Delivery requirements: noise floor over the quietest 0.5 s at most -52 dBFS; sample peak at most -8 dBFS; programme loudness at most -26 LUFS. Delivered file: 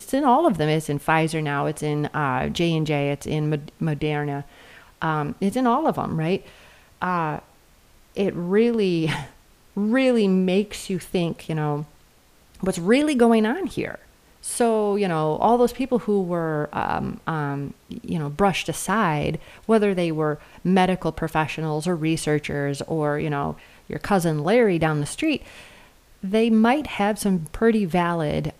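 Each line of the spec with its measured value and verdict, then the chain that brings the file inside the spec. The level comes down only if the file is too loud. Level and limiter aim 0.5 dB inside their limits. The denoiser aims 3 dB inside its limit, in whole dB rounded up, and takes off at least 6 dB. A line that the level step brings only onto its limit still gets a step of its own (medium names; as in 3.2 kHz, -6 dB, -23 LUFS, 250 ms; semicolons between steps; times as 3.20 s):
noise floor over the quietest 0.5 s -55 dBFS: pass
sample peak -4.0 dBFS: fail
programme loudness -22.5 LUFS: fail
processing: trim -4 dB; peak limiter -8.5 dBFS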